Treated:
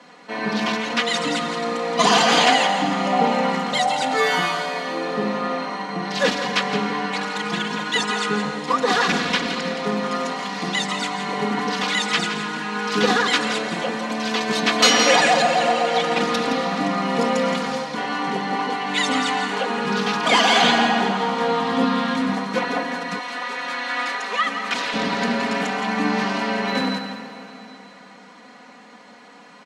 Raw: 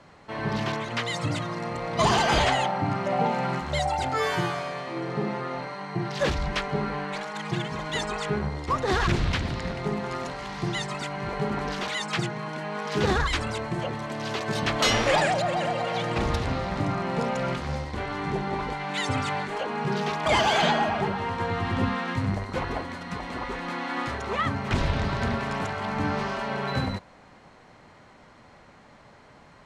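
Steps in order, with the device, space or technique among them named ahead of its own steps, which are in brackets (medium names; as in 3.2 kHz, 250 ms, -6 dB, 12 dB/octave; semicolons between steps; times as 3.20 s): PA in a hall (high-pass 180 Hz 24 dB/octave; peaking EQ 4 kHz +4 dB 2.3 oct; delay 168 ms -10 dB; reverberation RT60 3.4 s, pre-delay 91 ms, DRR 9.5 dB); 23.19–24.94 s: high-pass 910 Hz 6 dB/octave; comb 4.1 ms, depth 95%; 17.05–17.86 s: treble shelf 8.7 kHz +5.5 dB; trim +2.5 dB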